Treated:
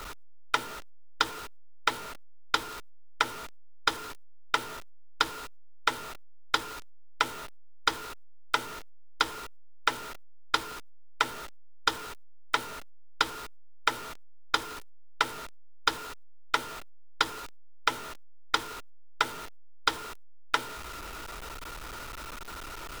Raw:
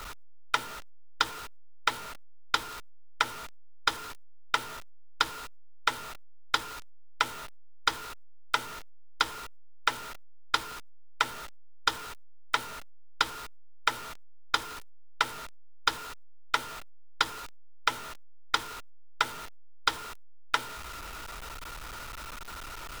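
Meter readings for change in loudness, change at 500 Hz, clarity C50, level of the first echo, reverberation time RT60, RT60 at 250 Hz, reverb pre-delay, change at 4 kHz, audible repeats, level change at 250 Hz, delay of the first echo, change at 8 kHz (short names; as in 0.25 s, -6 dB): +0.5 dB, +3.5 dB, none, none, none, none, none, 0.0 dB, none, +4.0 dB, none, 0.0 dB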